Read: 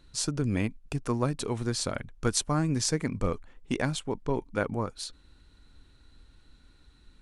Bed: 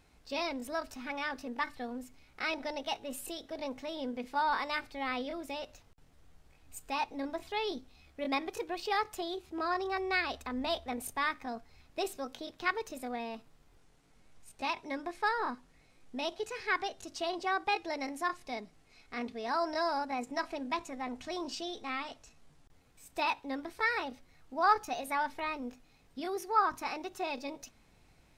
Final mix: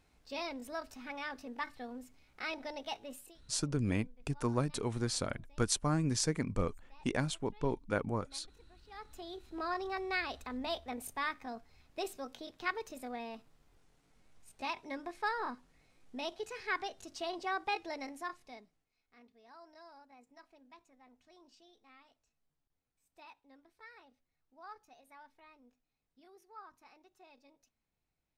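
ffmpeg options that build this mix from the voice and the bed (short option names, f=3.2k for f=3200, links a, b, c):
-filter_complex "[0:a]adelay=3350,volume=-4.5dB[a];[1:a]volume=18dB,afade=t=out:st=3.05:d=0.33:silence=0.0794328,afade=t=in:st=8.88:d=0.71:silence=0.0707946,afade=t=out:st=17.83:d=1.06:silence=0.1[b];[a][b]amix=inputs=2:normalize=0"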